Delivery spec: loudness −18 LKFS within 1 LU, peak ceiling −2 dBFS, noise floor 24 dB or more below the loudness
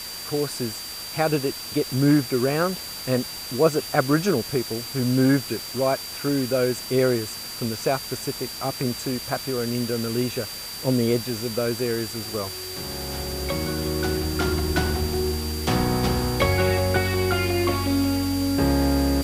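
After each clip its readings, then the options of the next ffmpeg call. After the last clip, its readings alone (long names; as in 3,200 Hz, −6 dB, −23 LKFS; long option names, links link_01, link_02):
interfering tone 4,700 Hz; level of the tone −35 dBFS; background noise floor −35 dBFS; target noise floor −48 dBFS; integrated loudness −24.0 LKFS; sample peak −4.0 dBFS; target loudness −18.0 LKFS
→ -af "bandreject=frequency=4700:width=30"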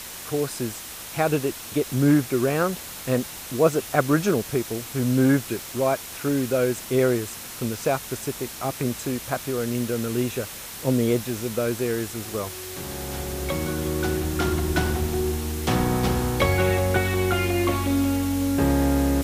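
interfering tone none found; background noise floor −38 dBFS; target noise floor −49 dBFS
→ -af "afftdn=noise_reduction=11:noise_floor=-38"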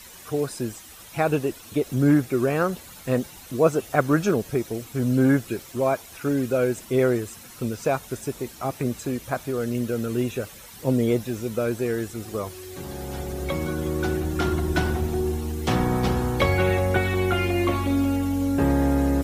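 background noise floor −45 dBFS; target noise floor −49 dBFS
→ -af "afftdn=noise_reduction=6:noise_floor=-45"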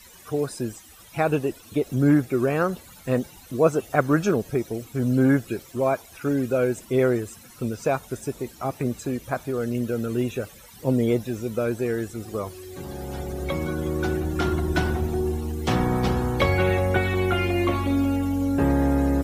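background noise floor −48 dBFS; target noise floor −49 dBFS
→ -af "afftdn=noise_reduction=6:noise_floor=-48"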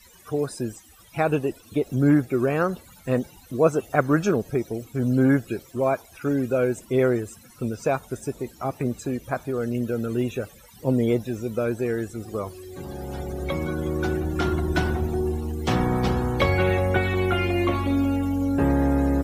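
background noise floor −51 dBFS; integrated loudness −25.0 LKFS; sample peak −4.0 dBFS; target loudness −18.0 LKFS
→ -af "volume=7dB,alimiter=limit=-2dB:level=0:latency=1"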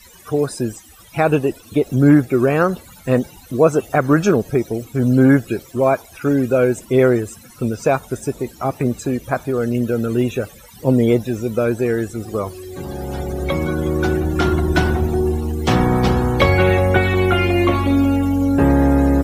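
integrated loudness −18.0 LKFS; sample peak −2.0 dBFS; background noise floor −44 dBFS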